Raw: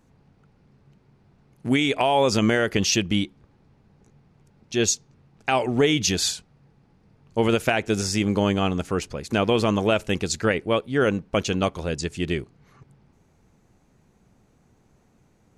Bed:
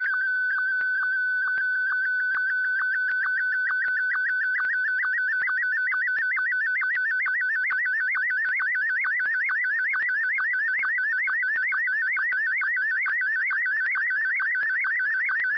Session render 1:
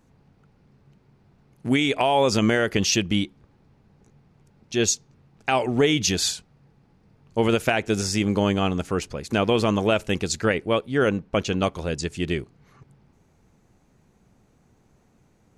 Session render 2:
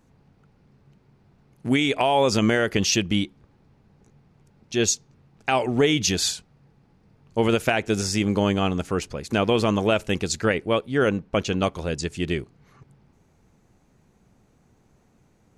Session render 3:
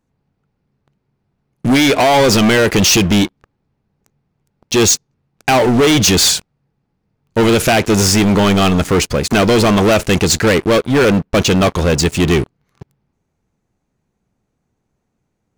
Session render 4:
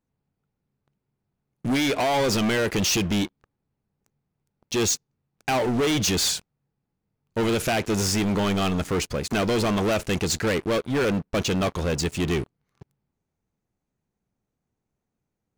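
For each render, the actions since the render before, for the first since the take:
11.09–11.6 high shelf 6200 Hz -7 dB
nothing audible
sample leveller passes 5
gain -11.5 dB

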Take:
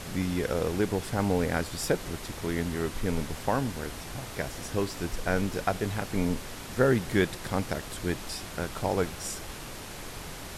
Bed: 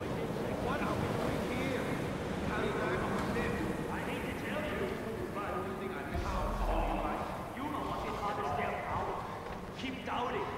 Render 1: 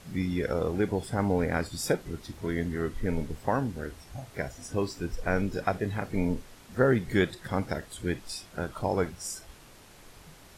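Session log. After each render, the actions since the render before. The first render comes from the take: noise print and reduce 12 dB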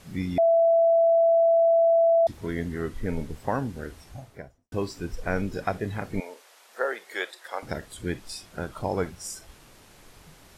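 0.38–2.27 bleep 666 Hz -16 dBFS; 4.03–4.72 studio fade out; 6.2–7.63 HPF 520 Hz 24 dB/oct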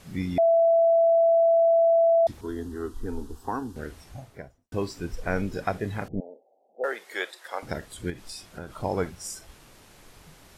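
2.41–3.76 fixed phaser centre 580 Hz, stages 6; 6.08–6.84 rippled Chebyshev low-pass 800 Hz, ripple 3 dB; 8.1–8.8 compressor 2.5:1, threshold -35 dBFS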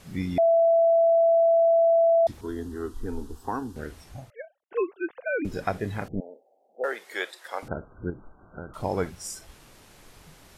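4.3–5.45 sine-wave speech; 7.68–8.74 brick-wall FIR low-pass 1600 Hz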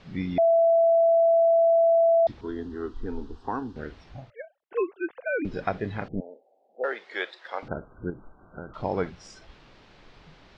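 LPF 4500 Hz 24 dB/oct; bell 86 Hz -5.5 dB 0.39 oct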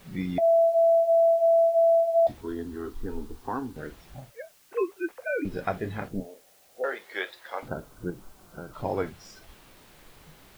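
in parallel at -7.5 dB: requantised 8-bit, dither triangular; on the sum: flange 0.24 Hz, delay 5 ms, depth 9.4 ms, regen -54%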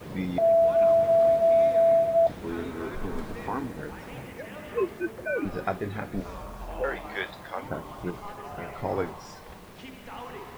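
add bed -5 dB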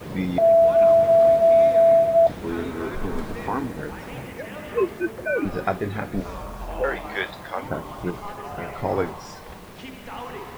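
gain +5 dB

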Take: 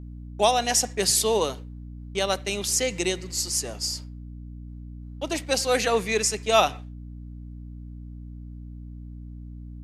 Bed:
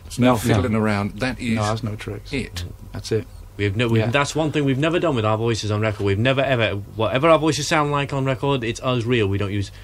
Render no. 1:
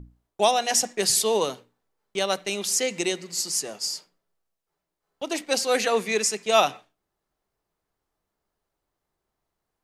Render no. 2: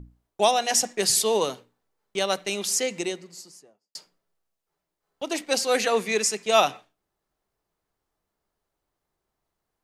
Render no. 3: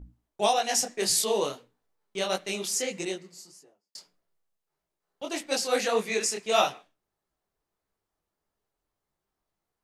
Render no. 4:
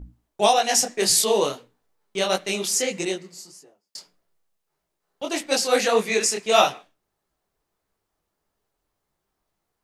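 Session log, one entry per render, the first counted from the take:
notches 60/120/180/240/300 Hz
2.65–3.95 studio fade out
detuned doubles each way 57 cents
gain +6 dB

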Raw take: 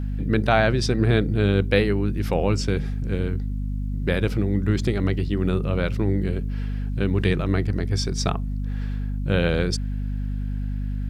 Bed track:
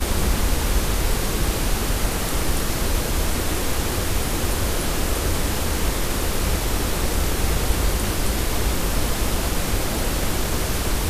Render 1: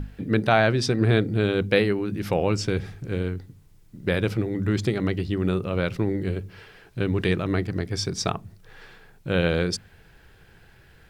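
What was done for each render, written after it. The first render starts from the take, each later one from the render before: notches 50/100/150/200/250 Hz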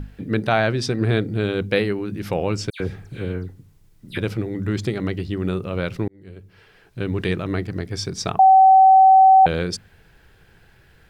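2.7–4.18 dispersion lows, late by 99 ms, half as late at 2800 Hz; 6.08–7.13 fade in; 8.39–9.46 bleep 764 Hz -7.5 dBFS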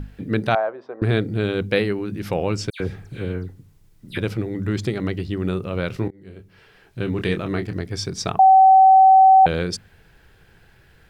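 0.55–1.02 Butterworth band-pass 770 Hz, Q 1.2; 5.87–7.73 doubler 26 ms -8.5 dB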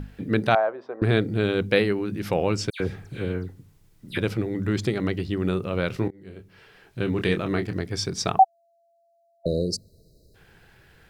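8.43–10.35 spectral delete 670–3800 Hz; low shelf 100 Hz -5 dB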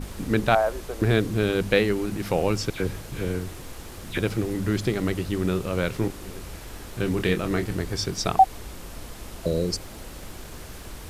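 add bed track -17 dB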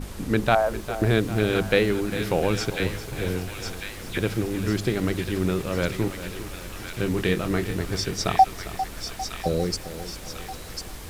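thin delay 1.047 s, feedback 53%, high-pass 1600 Hz, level -5 dB; lo-fi delay 0.401 s, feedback 55%, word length 7-bit, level -12.5 dB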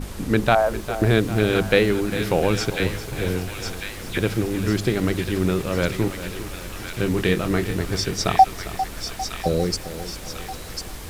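gain +3 dB; limiter -2 dBFS, peak gain reduction 1.5 dB

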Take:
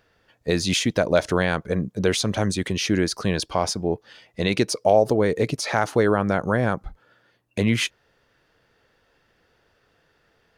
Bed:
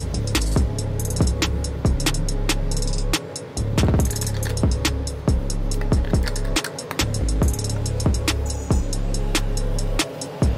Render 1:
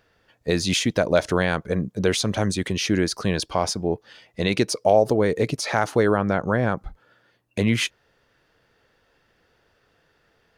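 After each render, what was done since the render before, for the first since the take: 6.17–6.77 air absorption 62 m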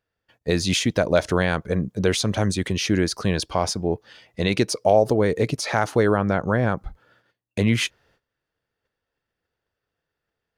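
gate -60 dBFS, range -19 dB; bell 75 Hz +3.5 dB 1.5 oct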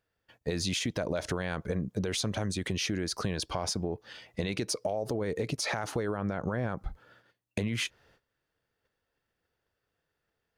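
limiter -15 dBFS, peak gain reduction 9 dB; compressor, threshold -28 dBFS, peak gain reduction 9 dB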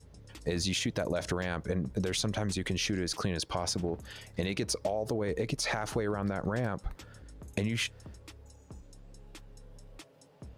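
add bed -29 dB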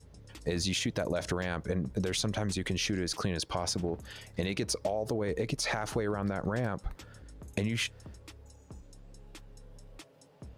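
nothing audible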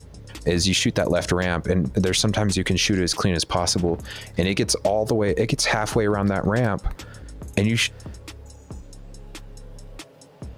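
gain +11 dB

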